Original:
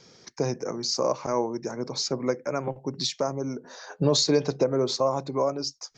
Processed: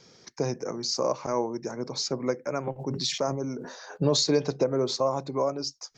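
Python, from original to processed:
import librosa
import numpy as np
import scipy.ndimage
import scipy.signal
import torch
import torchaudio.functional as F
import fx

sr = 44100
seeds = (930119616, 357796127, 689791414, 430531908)

y = fx.sustainer(x, sr, db_per_s=53.0, at=(2.78, 3.96), fade=0.02)
y = F.gain(torch.from_numpy(y), -1.5).numpy()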